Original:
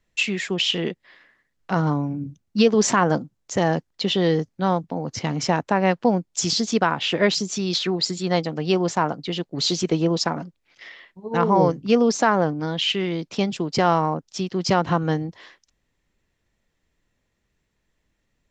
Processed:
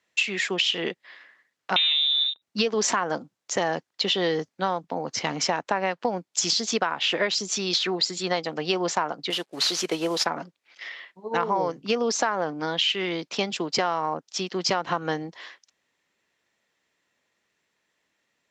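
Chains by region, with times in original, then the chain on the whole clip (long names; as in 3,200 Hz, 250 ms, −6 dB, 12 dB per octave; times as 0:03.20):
0:01.76–0:02.42: leveller curve on the samples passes 3 + voice inversion scrambler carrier 3,800 Hz
0:09.30–0:10.26: variable-slope delta modulation 64 kbit/s + low-shelf EQ 210 Hz −9.5 dB
whole clip: meter weighting curve A; downward compressor 10 to 1, threshold −23 dBFS; level +3 dB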